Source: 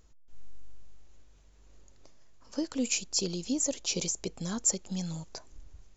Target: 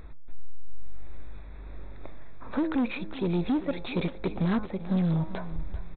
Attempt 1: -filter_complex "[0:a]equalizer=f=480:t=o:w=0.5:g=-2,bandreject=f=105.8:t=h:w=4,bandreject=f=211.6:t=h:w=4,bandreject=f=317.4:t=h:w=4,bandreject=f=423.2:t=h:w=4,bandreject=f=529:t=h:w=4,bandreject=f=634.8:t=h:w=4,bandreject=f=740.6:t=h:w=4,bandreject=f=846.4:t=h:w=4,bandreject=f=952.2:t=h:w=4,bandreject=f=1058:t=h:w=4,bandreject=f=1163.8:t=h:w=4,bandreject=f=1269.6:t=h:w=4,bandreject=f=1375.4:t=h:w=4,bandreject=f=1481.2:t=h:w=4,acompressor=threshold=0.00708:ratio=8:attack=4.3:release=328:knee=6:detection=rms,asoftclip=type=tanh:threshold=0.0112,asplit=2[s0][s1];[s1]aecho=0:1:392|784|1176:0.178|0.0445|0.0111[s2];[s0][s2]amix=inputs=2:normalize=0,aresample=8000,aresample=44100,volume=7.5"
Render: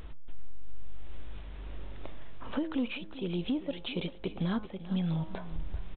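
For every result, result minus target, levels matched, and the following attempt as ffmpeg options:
compression: peak gain reduction +9 dB; 4 kHz band +8.0 dB
-filter_complex "[0:a]equalizer=f=480:t=o:w=0.5:g=-2,bandreject=f=105.8:t=h:w=4,bandreject=f=211.6:t=h:w=4,bandreject=f=317.4:t=h:w=4,bandreject=f=423.2:t=h:w=4,bandreject=f=529:t=h:w=4,bandreject=f=634.8:t=h:w=4,bandreject=f=740.6:t=h:w=4,bandreject=f=846.4:t=h:w=4,bandreject=f=952.2:t=h:w=4,bandreject=f=1058:t=h:w=4,bandreject=f=1163.8:t=h:w=4,bandreject=f=1269.6:t=h:w=4,bandreject=f=1375.4:t=h:w=4,bandreject=f=1481.2:t=h:w=4,acompressor=threshold=0.0237:ratio=8:attack=4.3:release=328:knee=6:detection=rms,asoftclip=type=tanh:threshold=0.0112,asplit=2[s0][s1];[s1]aecho=0:1:392|784|1176:0.178|0.0445|0.0111[s2];[s0][s2]amix=inputs=2:normalize=0,aresample=8000,aresample=44100,volume=7.5"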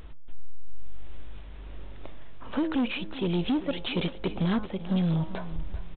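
4 kHz band +8.0 dB
-filter_complex "[0:a]asuperstop=centerf=3000:order=4:qfactor=2.7,equalizer=f=480:t=o:w=0.5:g=-2,bandreject=f=105.8:t=h:w=4,bandreject=f=211.6:t=h:w=4,bandreject=f=317.4:t=h:w=4,bandreject=f=423.2:t=h:w=4,bandreject=f=529:t=h:w=4,bandreject=f=634.8:t=h:w=4,bandreject=f=740.6:t=h:w=4,bandreject=f=846.4:t=h:w=4,bandreject=f=952.2:t=h:w=4,bandreject=f=1058:t=h:w=4,bandreject=f=1163.8:t=h:w=4,bandreject=f=1269.6:t=h:w=4,bandreject=f=1375.4:t=h:w=4,bandreject=f=1481.2:t=h:w=4,acompressor=threshold=0.0237:ratio=8:attack=4.3:release=328:knee=6:detection=rms,asoftclip=type=tanh:threshold=0.0112,asplit=2[s0][s1];[s1]aecho=0:1:392|784|1176:0.178|0.0445|0.0111[s2];[s0][s2]amix=inputs=2:normalize=0,aresample=8000,aresample=44100,volume=7.5"

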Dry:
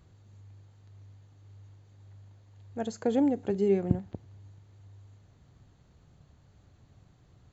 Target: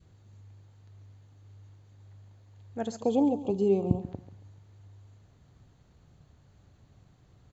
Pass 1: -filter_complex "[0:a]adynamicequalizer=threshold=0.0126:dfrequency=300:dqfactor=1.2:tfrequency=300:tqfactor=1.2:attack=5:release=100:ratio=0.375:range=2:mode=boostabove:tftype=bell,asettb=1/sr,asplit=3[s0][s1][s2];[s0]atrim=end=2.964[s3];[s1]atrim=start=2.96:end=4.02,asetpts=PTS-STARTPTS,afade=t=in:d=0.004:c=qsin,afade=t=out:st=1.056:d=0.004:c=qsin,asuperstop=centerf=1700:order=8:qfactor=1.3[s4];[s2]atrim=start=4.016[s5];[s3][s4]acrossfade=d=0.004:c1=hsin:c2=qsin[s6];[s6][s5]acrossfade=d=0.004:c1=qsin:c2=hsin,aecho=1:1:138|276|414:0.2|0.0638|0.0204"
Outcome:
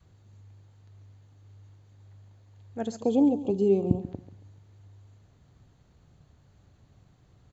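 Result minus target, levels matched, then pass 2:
1 kHz band -4.5 dB
-filter_complex "[0:a]adynamicequalizer=threshold=0.0126:dfrequency=970:dqfactor=1.2:tfrequency=970:tqfactor=1.2:attack=5:release=100:ratio=0.375:range=2:mode=boostabove:tftype=bell,asettb=1/sr,asplit=3[s0][s1][s2];[s0]atrim=end=2.964[s3];[s1]atrim=start=2.96:end=4.02,asetpts=PTS-STARTPTS,afade=t=in:d=0.004:c=qsin,afade=t=out:st=1.056:d=0.004:c=qsin,asuperstop=centerf=1700:order=8:qfactor=1.3[s4];[s2]atrim=start=4.016[s5];[s3][s4]acrossfade=d=0.004:c1=hsin:c2=qsin[s6];[s6][s5]acrossfade=d=0.004:c1=qsin:c2=hsin,aecho=1:1:138|276|414:0.2|0.0638|0.0204"

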